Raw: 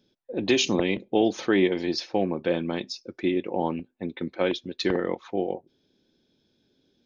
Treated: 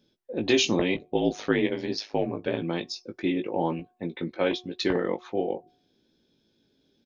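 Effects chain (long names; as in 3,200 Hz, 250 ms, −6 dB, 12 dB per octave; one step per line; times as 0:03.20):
0:00.94–0:02.62: ring modulation 52 Hz
double-tracking delay 18 ms −6 dB
hum removal 363.2 Hz, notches 3
level −1 dB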